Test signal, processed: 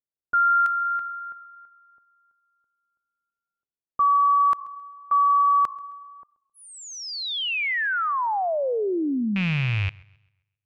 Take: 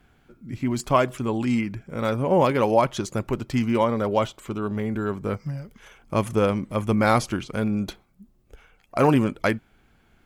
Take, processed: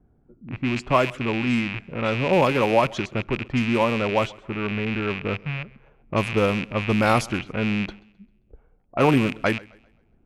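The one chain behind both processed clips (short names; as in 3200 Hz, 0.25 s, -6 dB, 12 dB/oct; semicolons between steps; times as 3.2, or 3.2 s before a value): rattling part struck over -35 dBFS, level -17 dBFS; low-pass opened by the level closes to 510 Hz, open at -16.5 dBFS; warbling echo 0.132 s, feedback 37%, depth 84 cents, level -23.5 dB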